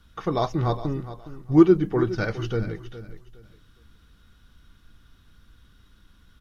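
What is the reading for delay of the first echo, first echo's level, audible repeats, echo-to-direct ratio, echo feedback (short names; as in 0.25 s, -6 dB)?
0.413 s, -14.0 dB, 2, -13.5 dB, 24%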